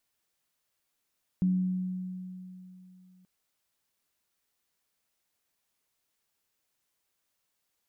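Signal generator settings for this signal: sine partials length 1.83 s, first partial 184 Hz, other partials 284 Hz, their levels -19.5 dB, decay 3.05 s, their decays 1.33 s, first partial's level -21.5 dB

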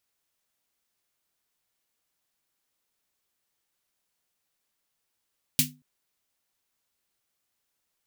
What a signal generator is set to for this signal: snare drum length 0.23 s, tones 150 Hz, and 250 Hz, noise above 2300 Hz, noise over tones 9.5 dB, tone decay 0.33 s, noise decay 0.17 s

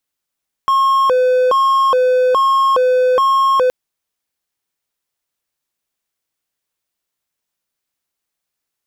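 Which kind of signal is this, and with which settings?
siren hi-lo 506–1080 Hz 1.2/s triangle -8 dBFS 3.02 s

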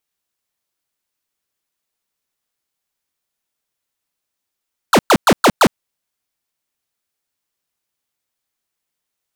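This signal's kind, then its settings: burst of laser zaps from 1600 Hz, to 150 Hz, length 0.06 s square, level -9 dB, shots 5, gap 0.11 s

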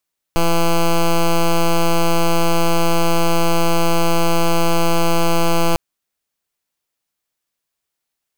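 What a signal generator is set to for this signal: pulse 168 Hz, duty 9% -13.5 dBFS 5.40 s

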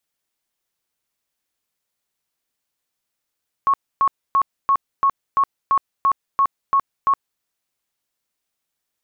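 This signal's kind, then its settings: tone bursts 1100 Hz, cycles 74, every 0.34 s, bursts 11, -12.5 dBFS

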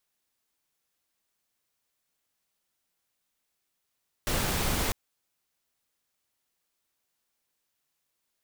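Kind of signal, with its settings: noise pink, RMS -28 dBFS 0.65 s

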